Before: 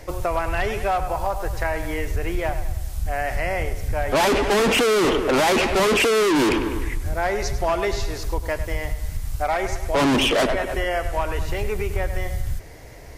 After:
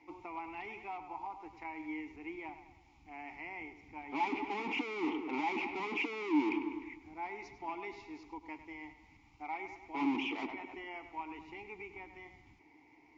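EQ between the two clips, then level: vowel filter u; rippled Chebyshev low-pass 7200 Hz, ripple 3 dB; low shelf 410 Hz -7 dB; 0.0 dB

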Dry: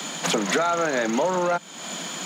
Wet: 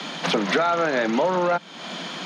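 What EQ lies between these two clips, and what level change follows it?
polynomial smoothing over 15 samples; +1.5 dB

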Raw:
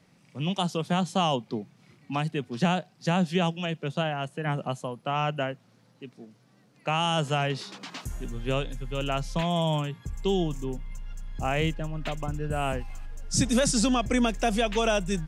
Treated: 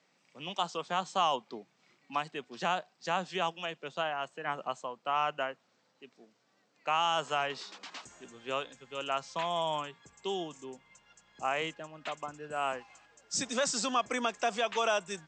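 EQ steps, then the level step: Bessel high-pass 500 Hz, order 2; dynamic EQ 1100 Hz, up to +7 dB, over -44 dBFS, Q 1.7; brick-wall FIR low-pass 8300 Hz; -4.5 dB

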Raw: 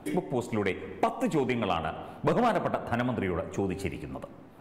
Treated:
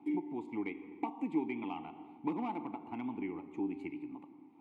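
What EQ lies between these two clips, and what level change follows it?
vowel filter u; HPF 70 Hz; +1.5 dB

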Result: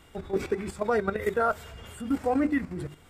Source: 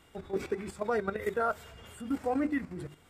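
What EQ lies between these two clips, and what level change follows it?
low shelf 76 Hz +6.5 dB; +4.5 dB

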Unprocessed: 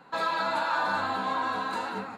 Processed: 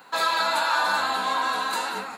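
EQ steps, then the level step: RIAA curve recording; +4.0 dB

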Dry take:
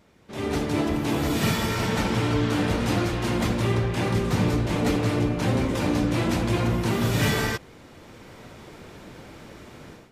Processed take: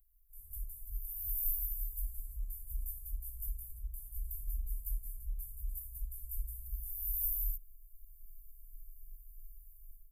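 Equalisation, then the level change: inverse Chebyshev band-stop 130–5800 Hz, stop band 70 dB; band shelf 7800 Hz +10 dB; +13.5 dB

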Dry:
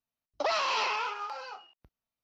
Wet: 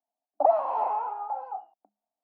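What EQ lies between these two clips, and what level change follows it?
rippled Chebyshev high-pass 200 Hz, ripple 9 dB; synth low-pass 740 Hz, resonance Q 4.5; +2.0 dB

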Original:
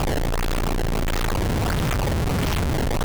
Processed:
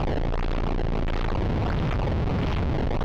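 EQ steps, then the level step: air absorption 250 m; bell 1600 Hz -3 dB 0.77 oct; -2.0 dB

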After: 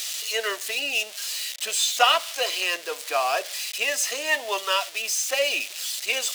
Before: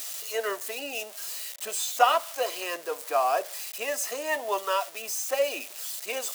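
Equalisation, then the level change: weighting filter D; 0.0 dB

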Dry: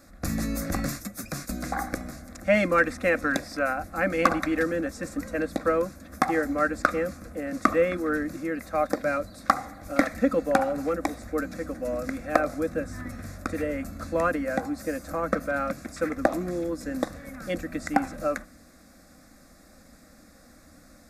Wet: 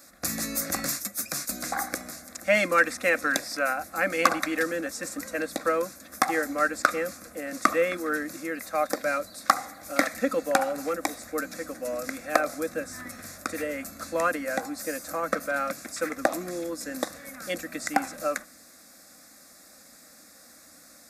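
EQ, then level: HPF 420 Hz 6 dB/oct; high shelf 3400 Hz +10 dB; 0.0 dB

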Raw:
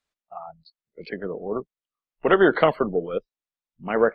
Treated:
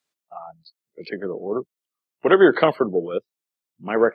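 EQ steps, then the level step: HPF 93 Hz 24 dB/oct; bell 350 Hz +5 dB 0.55 oct; high shelf 4200 Hz +8 dB; 0.0 dB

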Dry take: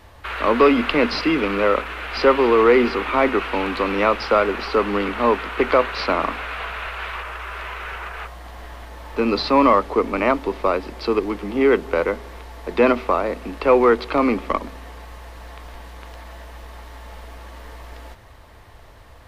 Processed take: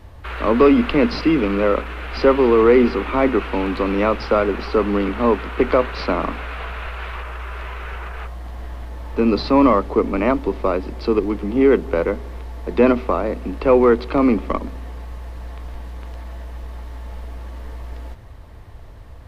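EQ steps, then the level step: low shelf 410 Hz +12 dB; -4.0 dB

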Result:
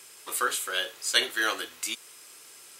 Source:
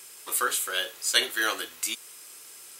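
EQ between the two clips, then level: high shelf 10000 Hz -8.5 dB; 0.0 dB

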